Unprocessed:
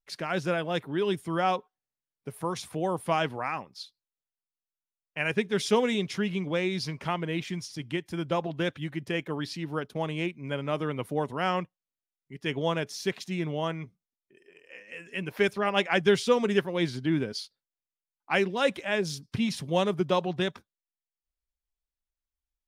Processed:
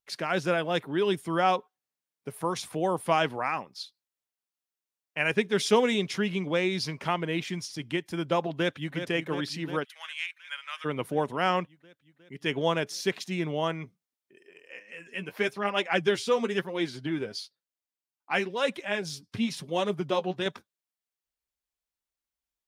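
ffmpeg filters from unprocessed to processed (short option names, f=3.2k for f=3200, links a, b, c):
-filter_complex "[0:a]asplit=2[a][b];[b]afade=t=in:st=8.53:d=0.01,afade=t=out:st=8.94:d=0.01,aecho=0:1:360|720|1080|1440|1800|2160|2520|2880|3240|3600|3960|4320:0.375837|0.281878|0.211409|0.158556|0.118917|0.089188|0.066891|0.0501682|0.0376262|0.0282196|0.0211647|0.0158735[c];[a][c]amix=inputs=2:normalize=0,asplit=3[d][e][f];[d]afade=t=out:st=9.83:d=0.02[g];[e]highpass=f=1.4k:w=0.5412,highpass=f=1.4k:w=1.3066,afade=t=in:st=9.83:d=0.02,afade=t=out:st=10.84:d=0.02[h];[f]afade=t=in:st=10.84:d=0.02[i];[g][h][i]amix=inputs=3:normalize=0,asettb=1/sr,asplit=3[j][k][l];[j]atrim=end=14.794[m];[k]atrim=start=14.79:end=20.46,asetpts=PTS-STARTPTS,afade=t=in:d=0.004:c=qsin,afade=t=out:st=5.666:d=0.004:c=qsin,flanger=delay=2.7:depth=8.4:regen=34:speed=1:shape=triangular[n];[l]atrim=start=20.456[o];[m][n]acrossfade=d=0.004:c1=hsin:c2=qsin[p];[p][o]acrossfade=d=0.004:c1=qsin:c2=hsin,highpass=f=180:p=1,volume=2.5dB"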